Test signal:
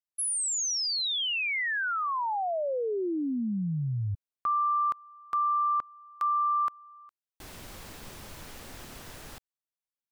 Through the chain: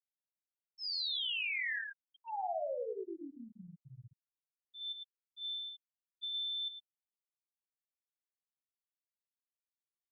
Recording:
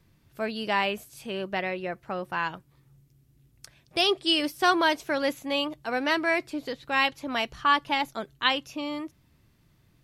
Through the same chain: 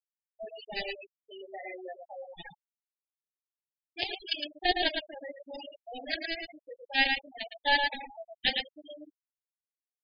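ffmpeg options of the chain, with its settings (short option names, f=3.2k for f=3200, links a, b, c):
-filter_complex "[0:a]aemphasis=mode=production:type=bsi,flanger=delay=16.5:depth=2.3:speed=0.23,highshelf=f=2.7k:g=-7.5,acrossover=split=490|840[a][b][c];[a]acompressor=threshold=-50dB:ratio=4:attack=4.4:release=446:knee=6:detection=rms[d];[d][b][c]amix=inputs=3:normalize=0,aeval=exprs='0.266*(cos(1*acos(clip(val(0)/0.266,-1,1)))-cos(1*PI/2))+0.00422*(cos(5*acos(clip(val(0)/0.266,-1,1)))-cos(5*PI/2))+0.0596*(cos(7*acos(clip(val(0)/0.266,-1,1)))-cos(7*PI/2))':c=same,aeval=exprs='val(0)+0.000708*sin(2*PI*1800*n/s)':c=same,asplit=2[e][f];[f]asoftclip=type=tanh:threshold=-28dB,volume=-5dB[g];[e][g]amix=inputs=2:normalize=0,aresample=11025,aresample=44100,acrusher=bits=11:mix=0:aa=0.000001,asuperstop=centerf=1200:order=12:qfactor=1.6,aecho=1:1:111:0.596,afftfilt=real='re*gte(hypot(re,im),0.0355)':imag='im*gte(hypot(re,im),0.0355)':win_size=1024:overlap=0.75,volume=2dB"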